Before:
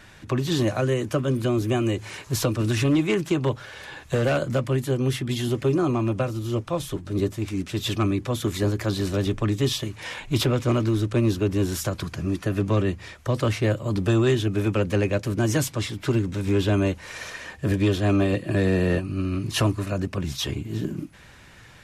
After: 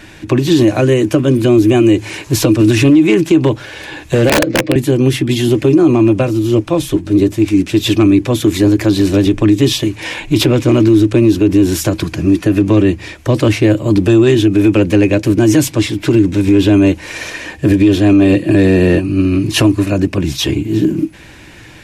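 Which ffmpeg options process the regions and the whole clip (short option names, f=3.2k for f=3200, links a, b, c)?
-filter_complex "[0:a]asettb=1/sr,asplit=3[a][b][c];[a]atrim=end=4.294[d];[b]atrim=start=4.29:end=4.76,asetpts=PTS-STARTPTS,afade=t=in:d=0.004:c=qsin,afade=t=out:st=0.466:d=0.004:c=qsin,highpass=230,equalizer=f=500:t=q:w=4:g=8,equalizer=f=950:t=q:w=4:g=-10,equalizer=f=1.4k:t=q:w=4:g=-7,equalizer=f=3.1k:t=q:w=4:g=-9,lowpass=f=4.6k:w=0.5412,lowpass=f=4.6k:w=1.3066,aecho=1:1:6.4:0.69,atrim=end_sample=20727,aeval=exprs='(mod(5.62*val(0)+1,2)-1)/5.62':c=same[e];[c]atrim=start=4.756[f];[d][e]acrossfade=d=0.004:c1=hsin:c2=qsin[g];[g][f]acrossfade=d=0.004:c1=qsin:c2=hsin,equalizer=f=315:t=o:w=0.33:g=12,equalizer=f=1.25k:t=o:w=0.33:g=-6,equalizer=f=2.5k:t=o:w=0.33:g=4,alimiter=level_in=11.5dB:limit=-1dB:release=50:level=0:latency=1,volume=-1dB"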